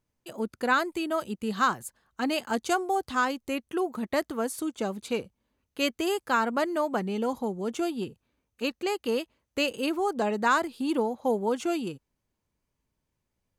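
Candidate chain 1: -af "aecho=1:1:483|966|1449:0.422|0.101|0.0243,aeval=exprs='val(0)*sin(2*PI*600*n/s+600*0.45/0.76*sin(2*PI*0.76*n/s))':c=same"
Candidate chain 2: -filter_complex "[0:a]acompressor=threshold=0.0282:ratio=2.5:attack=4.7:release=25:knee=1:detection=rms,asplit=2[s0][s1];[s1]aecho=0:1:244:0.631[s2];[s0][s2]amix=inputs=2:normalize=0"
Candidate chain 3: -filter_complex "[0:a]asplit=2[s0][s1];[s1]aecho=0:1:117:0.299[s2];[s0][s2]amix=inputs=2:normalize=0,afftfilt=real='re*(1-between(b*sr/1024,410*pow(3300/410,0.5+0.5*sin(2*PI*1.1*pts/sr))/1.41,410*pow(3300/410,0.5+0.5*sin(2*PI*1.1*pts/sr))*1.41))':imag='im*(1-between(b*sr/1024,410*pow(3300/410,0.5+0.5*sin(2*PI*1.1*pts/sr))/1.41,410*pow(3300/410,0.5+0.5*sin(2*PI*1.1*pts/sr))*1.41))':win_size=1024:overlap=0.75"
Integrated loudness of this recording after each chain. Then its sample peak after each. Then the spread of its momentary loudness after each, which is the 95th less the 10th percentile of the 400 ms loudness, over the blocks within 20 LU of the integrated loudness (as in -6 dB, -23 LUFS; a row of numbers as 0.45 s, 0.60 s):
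-31.5 LUFS, -32.5 LUFS, -29.5 LUFS; -12.0 dBFS, -18.0 dBFS, -12.5 dBFS; 10 LU, 7 LU, 10 LU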